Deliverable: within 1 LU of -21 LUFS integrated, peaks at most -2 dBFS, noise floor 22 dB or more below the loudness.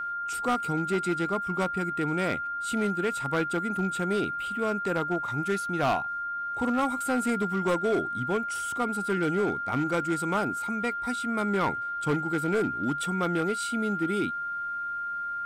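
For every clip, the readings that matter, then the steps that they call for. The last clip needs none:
clipped 1.5%; flat tops at -20.5 dBFS; steady tone 1400 Hz; tone level -30 dBFS; loudness -28.5 LUFS; peak -20.5 dBFS; loudness target -21.0 LUFS
-> clip repair -20.5 dBFS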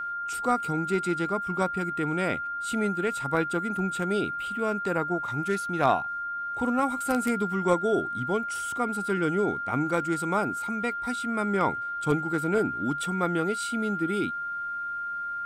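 clipped 0.0%; steady tone 1400 Hz; tone level -30 dBFS
-> notch 1400 Hz, Q 30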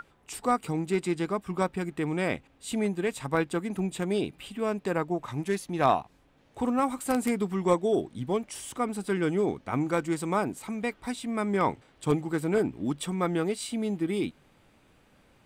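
steady tone none; loudness -29.5 LUFS; peak -11.0 dBFS; loudness target -21.0 LUFS
-> gain +8.5 dB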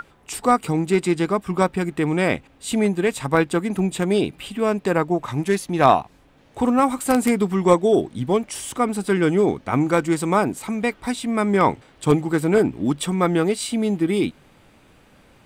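loudness -21.0 LUFS; peak -2.5 dBFS; noise floor -54 dBFS

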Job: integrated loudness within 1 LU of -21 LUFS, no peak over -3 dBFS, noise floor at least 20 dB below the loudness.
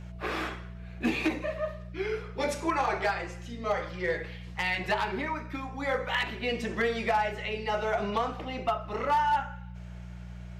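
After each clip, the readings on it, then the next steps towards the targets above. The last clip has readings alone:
clipped 0.5%; flat tops at -20.0 dBFS; hum 60 Hz; harmonics up to 180 Hz; hum level -40 dBFS; loudness -31.0 LUFS; peak -20.0 dBFS; loudness target -21.0 LUFS
-> clip repair -20 dBFS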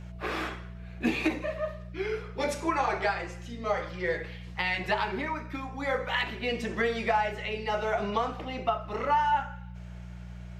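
clipped 0.0%; hum 60 Hz; harmonics up to 180 Hz; hum level -40 dBFS
-> de-hum 60 Hz, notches 3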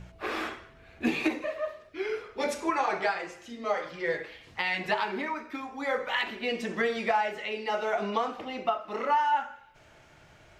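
hum none; loudness -30.5 LUFS; peak -13.5 dBFS; loudness target -21.0 LUFS
-> gain +9.5 dB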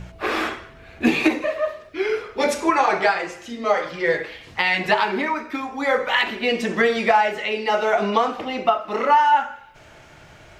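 loudness -21.0 LUFS; peak -4.0 dBFS; noise floor -47 dBFS

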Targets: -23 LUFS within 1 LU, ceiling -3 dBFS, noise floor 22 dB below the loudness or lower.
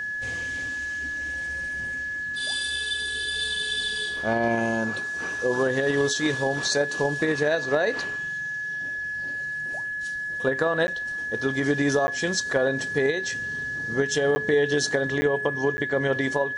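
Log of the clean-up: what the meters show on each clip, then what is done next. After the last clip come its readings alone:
dropouts 5; longest dropout 10 ms; steady tone 1700 Hz; tone level -28 dBFS; loudness -25.5 LUFS; peak -9.0 dBFS; loudness target -23.0 LUFS
-> interpolate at 10.87/12.07/14.35/15.21/15.77, 10 ms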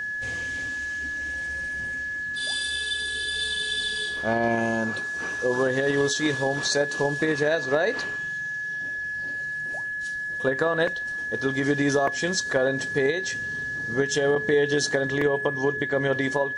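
dropouts 0; steady tone 1700 Hz; tone level -28 dBFS
-> notch 1700 Hz, Q 30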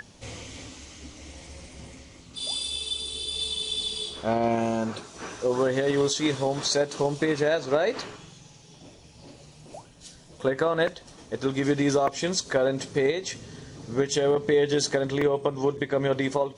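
steady tone none; loudness -26.0 LUFS; peak -9.5 dBFS; loudness target -23.0 LUFS
-> gain +3 dB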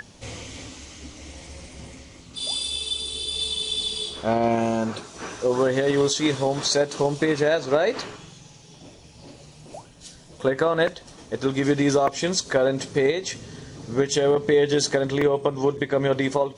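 loudness -23.0 LUFS; peak -6.5 dBFS; noise floor -48 dBFS

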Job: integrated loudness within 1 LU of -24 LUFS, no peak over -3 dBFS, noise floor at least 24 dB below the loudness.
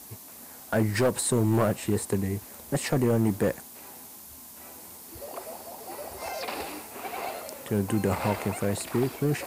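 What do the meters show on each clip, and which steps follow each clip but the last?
clipped 1.2%; flat tops at -17.5 dBFS; noise floor -46 dBFS; noise floor target -53 dBFS; loudness -28.5 LUFS; peak -17.5 dBFS; loudness target -24.0 LUFS
-> clip repair -17.5 dBFS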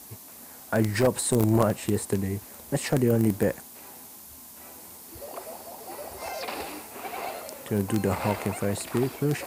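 clipped 0.0%; noise floor -46 dBFS; noise floor target -52 dBFS
-> denoiser 6 dB, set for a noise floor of -46 dBFS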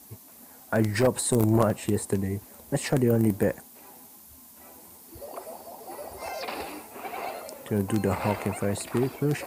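noise floor -51 dBFS; loudness -27.0 LUFS; peak -8.5 dBFS; loudness target -24.0 LUFS
-> gain +3 dB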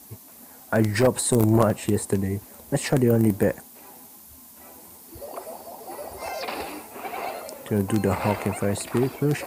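loudness -24.0 LUFS; peak -5.5 dBFS; noise floor -48 dBFS

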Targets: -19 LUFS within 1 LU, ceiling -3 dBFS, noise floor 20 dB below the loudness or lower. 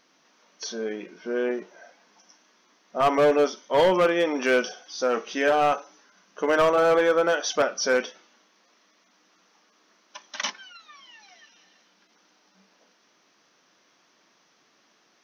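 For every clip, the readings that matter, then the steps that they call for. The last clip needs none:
clipped 0.9%; flat tops at -14.5 dBFS; loudness -23.5 LUFS; peak -14.5 dBFS; loudness target -19.0 LUFS
-> clip repair -14.5 dBFS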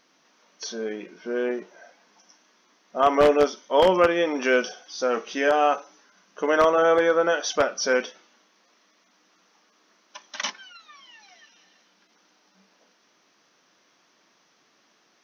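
clipped 0.0%; loudness -22.5 LUFS; peak -5.5 dBFS; loudness target -19.0 LUFS
-> gain +3.5 dB; limiter -3 dBFS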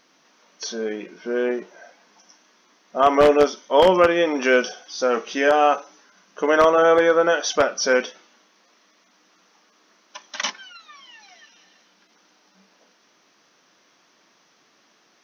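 loudness -19.5 LUFS; peak -3.0 dBFS; noise floor -61 dBFS

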